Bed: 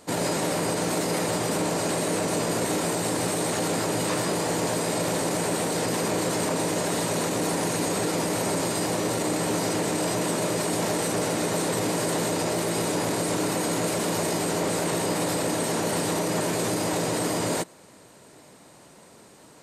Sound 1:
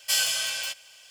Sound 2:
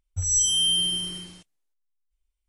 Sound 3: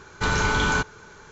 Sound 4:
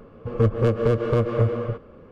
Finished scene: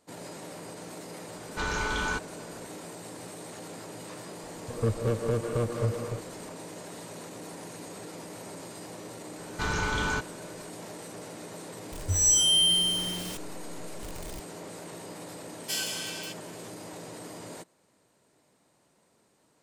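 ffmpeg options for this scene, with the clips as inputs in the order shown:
-filter_complex "[3:a]asplit=2[a][b];[0:a]volume=-16.5dB[c];[a]equalizer=f=120:w=1.5:g=-8[d];[2:a]aeval=exprs='val(0)+0.5*0.0237*sgn(val(0))':c=same[e];[d]atrim=end=1.31,asetpts=PTS-STARTPTS,volume=-7.5dB,afade=t=in:d=0.004:c=hsin,afade=t=out:st=1.306:d=0.004:c=hsin,adelay=1360[f];[4:a]atrim=end=2.11,asetpts=PTS-STARTPTS,volume=-8dB,afade=t=in:d=0.004:c=hsin,afade=t=out:st=2.106:d=0.004:c=hsin,adelay=4430[g];[b]atrim=end=1.31,asetpts=PTS-STARTPTS,volume=-7dB,afade=t=in:d=0.004:c=hsin,afade=t=out:st=1.306:d=0.004:c=hsin,adelay=413658S[h];[e]atrim=end=2.48,asetpts=PTS-STARTPTS,volume=-1dB,afade=t=in:d=0.004:c=hsin,afade=t=out:st=2.476:d=0.004:c=hsin,adelay=11920[i];[1:a]atrim=end=1.1,asetpts=PTS-STARTPTS,volume=-8dB,afade=t=in:d=0.004:c=hsin,afade=t=out:st=1.096:d=0.004:c=hsin,adelay=15600[j];[c][f][g][h][i][j]amix=inputs=6:normalize=0"

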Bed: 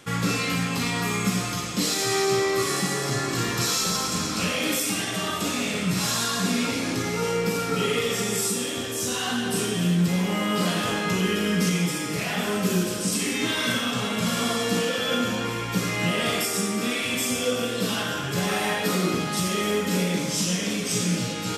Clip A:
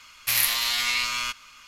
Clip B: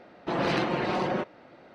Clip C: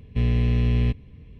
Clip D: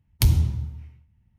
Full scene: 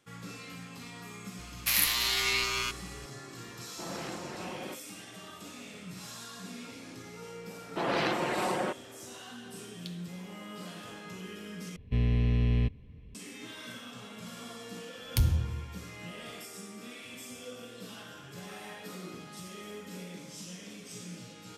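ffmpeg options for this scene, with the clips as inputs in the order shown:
-filter_complex "[2:a]asplit=2[a][b];[4:a]asplit=2[c][d];[0:a]volume=-19.5dB[e];[1:a]aeval=exprs='val(0)+0.00794*(sin(2*PI*60*n/s)+sin(2*PI*2*60*n/s)/2+sin(2*PI*3*60*n/s)/3+sin(2*PI*4*60*n/s)/4+sin(2*PI*5*60*n/s)/5)':c=same[f];[b]lowshelf=f=280:g=-8[g];[c]bandpass=f=3.7k:t=q:w=4.4:csg=0[h];[e]asplit=2[i][j];[i]atrim=end=11.764[k];[3:a]atrim=end=1.39,asetpts=PTS-STARTPTS,volume=-5.5dB[l];[j]atrim=start=13.146[m];[f]atrim=end=1.67,asetpts=PTS-STARTPTS,volume=-4dB,afade=t=in:d=0.004:c=hsin,afade=t=out:st=1.666:d=0.004:c=hsin,adelay=1390[n];[a]atrim=end=1.74,asetpts=PTS-STARTPTS,volume=-13.5dB,afade=t=in:d=0.004:c=hsin,afade=t=out:st=1.736:d=0.004:c=hsin,adelay=3510[o];[g]atrim=end=1.74,asetpts=PTS-STARTPTS,volume=-1dB,afade=t=in:d=0.004:c=hsin,afade=t=out:st=1.736:d=0.004:c=hsin,adelay=7490[p];[h]atrim=end=1.38,asetpts=PTS-STARTPTS,volume=-10dB,afade=t=in:d=0.004:c=hsin,afade=t=out:st=1.376:d=0.004:c=hsin,adelay=9640[q];[d]atrim=end=1.38,asetpts=PTS-STARTPTS,volume=-7.5dB,afade=t=in:d=0.004:c=hsin,afade=t=out:st=1.376:d=0.004:c=hsin,adelay=14950[r];[k][l]acrossfade=d=0.004:c1=hsin:c2=hsin[s];[s][m]acrossfade=d=0.004:c1=hsin:c2=hsin[t];[t][n][o][p][q][r]amix=inputs=6:normalize=0"

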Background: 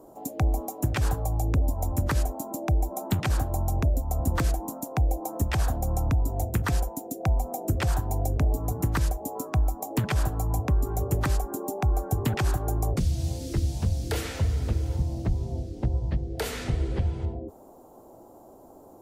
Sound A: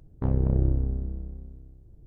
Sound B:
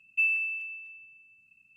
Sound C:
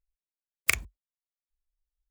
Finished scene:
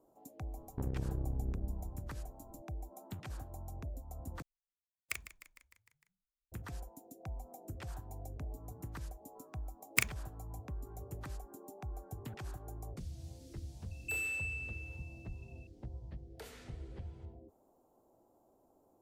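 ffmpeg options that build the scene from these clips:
-filter_complex "[3:a]asplit=2[a][b];[0:a]volume=-19.5dB[c];[1:a]acompressor=threshold=-25dB:ratio=6:attack=3.2:release=140:knee=1:detection=peak[d];[a]asplit=7[e][f][g][h][i][j][k];[f]adelay=152,afreqshift=-40,volume=-13.5dB[l];[g]adelay=304,afreqshift=-80,volume=-17.9dB[m];[h]adelay=456,afreqshift=-120,volume=-22.4dB[n];[i]adelay=608,afreqshift=-160,volume=-26.8dB[o];[j]adelay=760,afreqshift=-200,volume=-31.2dB[p];[k]adelay=912,afreqshift=-240,volume=-35.7dB[q];[e][l][m][n][o][p][q]amix=inputs=7:normalize=0[r];[2:a]asoftclip=type=tanh:threshold=-32.5dB[s];[c]asplit=2[t][u];[t]atrim=end=4.424[v];[r]atrim=end=2.1,asetpts=PTS-STARTPTS,volume=-15.5dB[w];[u]atrim=start=6.516[x];[d]atrim=end=2.06,asetpts=PTS-STARTPTS,volume=-6.5dB,afade=t=in:d=0.004:c=hsin,afade=t=out:st=2.056:d=0.004:c=hsin,adelay=560[y];[b]atrim=end=2.1,asetpts=PTS-STARTPTS,volume=-5.5dB,afade=t=in:d=0.004:c=hsin,afade=t=out:st=2.096:d=0.004:c=hsin,adelay=9290[z];[s]atrim=end=1.76,asetpts=PTS-STARTPTS,volume=-3dB,afade=t=in:d=0.004:c=hsin,afade=t=out:st=1.756:d=0.004:c=hsin,adelay=13910[aa];[v][w]acrossfade=d=0.004:c1=hsin:c2=hsin[ab];[ab][x]acrossfade=d=0.004:c1=hsin:c2=hsin[ac];[ac][y][z][aa]amix=inputs=4:normalize=0"

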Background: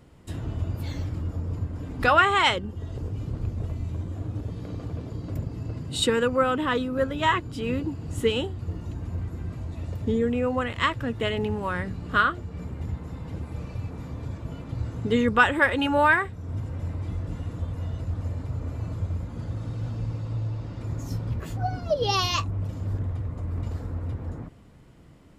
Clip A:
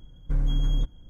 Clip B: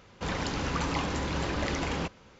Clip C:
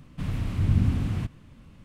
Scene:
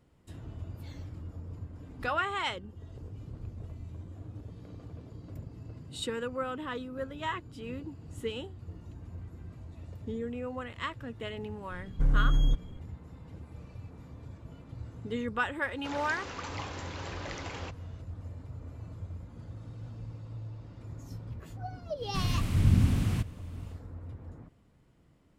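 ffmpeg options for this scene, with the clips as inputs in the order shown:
-filter_complex "[0:a]volume=-12dB[a];[2:a]bass=f=250:g=-13,treble=f=4k:g=0[b];[3:a]highshelf=f=4.5k:g=10.5[c];[1:a]atrim=end=1.09,asetpts=PTS-STARTPTS,volume=-0.5dB,afade=t=in:d=0.004:c=hsin,afade=t=out:st=1.086:d=0.004:c=hsin,adelay=515970S[d];[b]atrim=end=2.39,asetpts=PTS-STARTPTS,volume=-7.5dB,afade=t=in:d=0.004:c=hsin,afade=t=out:st=2.386:d=0.004:c=hsin,adelay=15630[e];[c]atrim=end=1.84,asetpts=PTS-STARTPTS,volume=-1dB,afade=t=in:d=0.1,afade=t=out:st=1.74:d=0.1,adelay=968436S[f];[a][d][e][f]amix=inputs=4:normalize=0"

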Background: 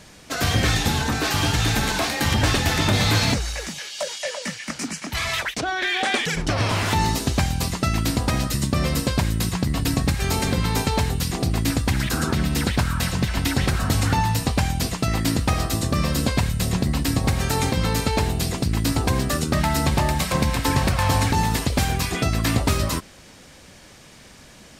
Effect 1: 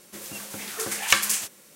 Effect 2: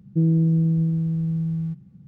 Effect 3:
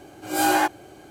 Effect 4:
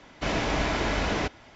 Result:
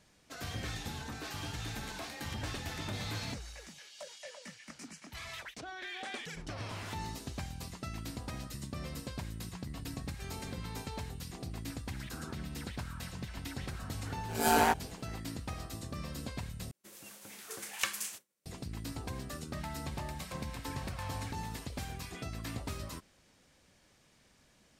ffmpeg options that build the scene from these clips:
-filter_complex "[0:a]volume=-19.5dB[a];[3:a]aeval=exprs='val(0)*sin(2*PI*80*n/s)':c=same[b];[1:a]agate=range=-33dB:threshold=-42dB:ratio=3:release=100:detection=peak[c];[a]asplit=2[d][e];[d]atrim=end=16.714[f];[c]atrim=end=1.75,asetpts=PTS-STARTPTS,volume=-14dB[g];[e]atrim=start=18.456[h];[b]atrim=end=1.1,asetpts=PTS-STARTPTS,volume=-3.5dB,afade=t=in:d=0.004:c=hsin,afade=t=out:st=1.096:d=0.004:c=hsin,adelay=14060[i];[f][g]acrossfade=d=0.004:c1=hsin:c2=hsin[j];[j][h]acrossfade=d=0.004:c1=hsin:c2=hsin[k];[k][i]amix=inputs=2:normalize=0"

